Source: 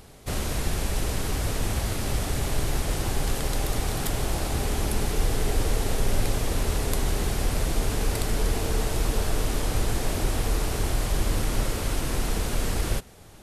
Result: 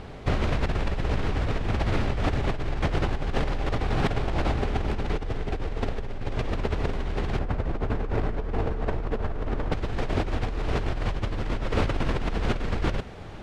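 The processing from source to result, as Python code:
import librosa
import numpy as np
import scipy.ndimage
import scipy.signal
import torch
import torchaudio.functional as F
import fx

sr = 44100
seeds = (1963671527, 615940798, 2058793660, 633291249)

y = fx.tracing_dist(x, sr, depth_ms=0.41)
y = fx.lowpass(y, sr, hz=fx.steps((0.0, 2700.0), (7.39, 1600.0), (9.72, 2900.0)), slope=12)
y = fx.over_compress(y, sr, threshold_db=-30.0, ratio=-1.0)
y = y * 10.0 ** (4.0 / 20.0)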